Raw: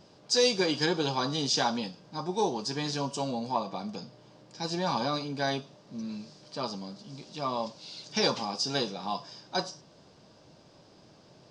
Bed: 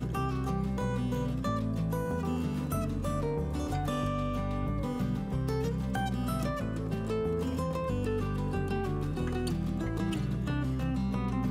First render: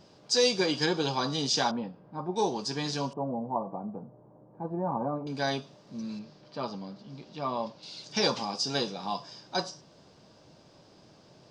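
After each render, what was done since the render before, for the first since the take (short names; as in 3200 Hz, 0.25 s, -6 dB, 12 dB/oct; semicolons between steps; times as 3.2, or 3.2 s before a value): 1.71–2.36 LPF 1300 Hz; 3.13–5.27 LPF 1000 Hz 24 dB/oct; 6.19–7.83 Bessel low-pass 2900 Hz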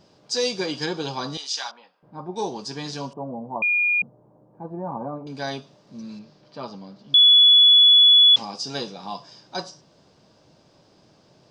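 1.37–2.03 HPF 1200 Hz; 3.62–4.02 bleep 2430 Hz -17.5 dBFS; 7.14–8.36 bleep 3410 Hz -9.5 dBFS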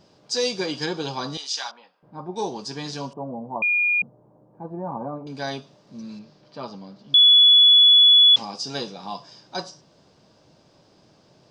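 nothing audible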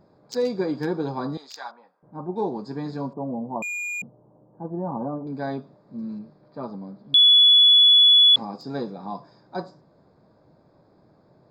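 Wiener smoothing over 15 samples; dynamic EQ 250 Hz, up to +5 dB, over -46 dBFS, Q 0.97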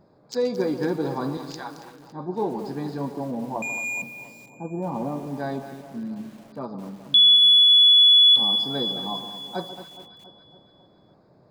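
echo with dull and thin repeats by turns 0.139 s, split 1300 Hz, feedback 76%, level -12 dB; lo-fi delay 0.221 s, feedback 35%, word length 7-bit, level -11 dB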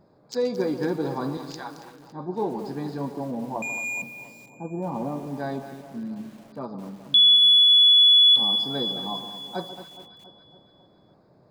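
gain -1 dB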